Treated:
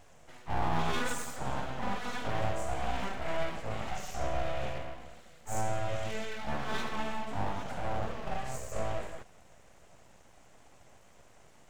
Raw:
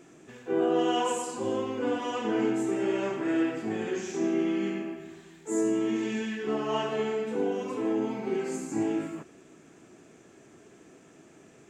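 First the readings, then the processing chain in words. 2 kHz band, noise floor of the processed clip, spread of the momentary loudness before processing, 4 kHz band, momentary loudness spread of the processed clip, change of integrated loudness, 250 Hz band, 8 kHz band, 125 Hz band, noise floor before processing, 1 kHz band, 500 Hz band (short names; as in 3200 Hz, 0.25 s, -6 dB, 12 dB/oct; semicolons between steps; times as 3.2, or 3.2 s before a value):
-0.5 dB, -57 dBFS, 6 LU, -2.5 dB, 6 LU, -7.0 dB, -14.0 dB, -3.0 dB, +5.0 dB, -55 dBFS, 0.0 dB, -9.0 dB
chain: full-wave rectifier; gain -2 dB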